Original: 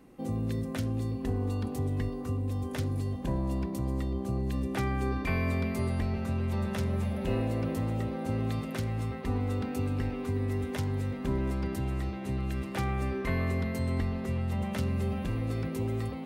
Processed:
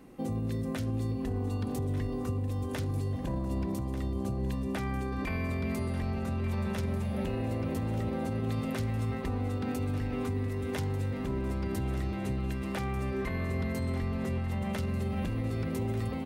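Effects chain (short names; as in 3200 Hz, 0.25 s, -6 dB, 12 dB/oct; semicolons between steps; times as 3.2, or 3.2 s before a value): limiter -28 dBFS, peak gain reduction 10 dB; on a send: feedback echo 1.191 s, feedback 28%, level -12.5 dB; on the sum: gain +3 dB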